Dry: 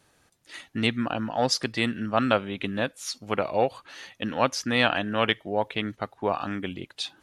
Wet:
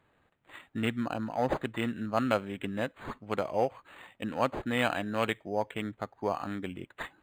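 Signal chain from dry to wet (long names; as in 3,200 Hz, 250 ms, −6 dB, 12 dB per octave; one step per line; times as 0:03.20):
linearly interpolated sample-rate reduction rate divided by 8×
level −4.5 dB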